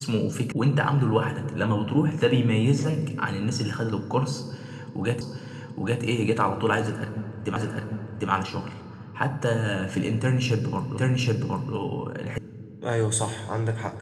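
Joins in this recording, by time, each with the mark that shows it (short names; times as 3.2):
0.52 sound cut off
5.21 repeat of the last 0.82 s
7.56 repeat of the last 0.75 s
10.97 repeat of the last 0.77 s
12.38 sound cut off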